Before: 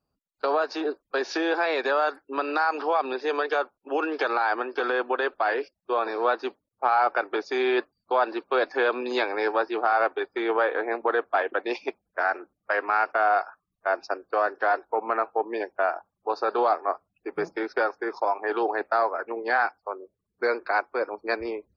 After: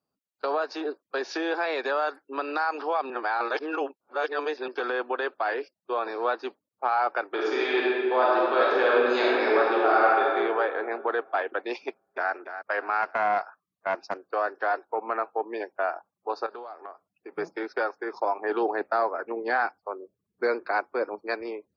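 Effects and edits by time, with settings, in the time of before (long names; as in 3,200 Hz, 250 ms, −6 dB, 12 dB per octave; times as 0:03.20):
0:03.10–0:04.68: reverse
0:07.29–0:10.28: thrown reverb, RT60 2.1 s, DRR −5 dB
0:11.87–0:12.33: delay throw 290 ms, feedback 40%, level −10 dB
0:13.02–0:14.21: highs frequency-modulated by the lows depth 0.22 ms
0:16.46–0:17.36: downward compressor 12 to 1, threshold −33 dBFS
0:18.13–0:21.21: low-shelf EQ 260 Hz +12 dB
whole clip: high-pass filter 160 Hz 12 dB per octave; level −3 dB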